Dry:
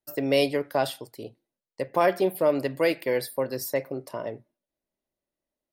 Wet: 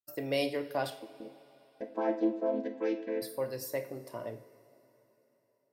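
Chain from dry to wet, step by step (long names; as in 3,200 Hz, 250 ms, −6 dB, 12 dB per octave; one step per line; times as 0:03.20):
0:00.90–0:03.22: channel vocoder with a chord as carrier minor triad, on A3
noise gate −46 dBFS, range −12 dB
coupled-rooms reverb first 0.47 s, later 3.8 s, from −18 dB, DRR 6 dB
level −8.5 dB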